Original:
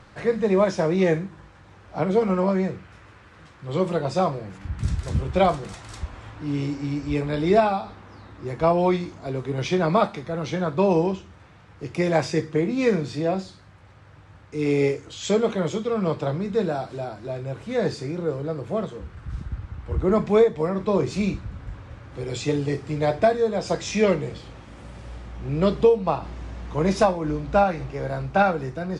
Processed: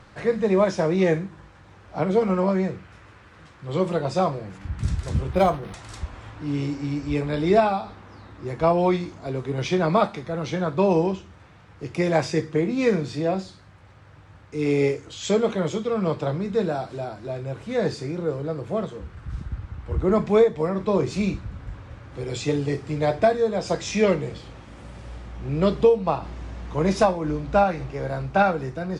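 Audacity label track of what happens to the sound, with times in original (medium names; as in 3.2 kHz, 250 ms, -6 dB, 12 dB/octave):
5.330000	5.740000	decimation joined by straight lines rate divided by 6×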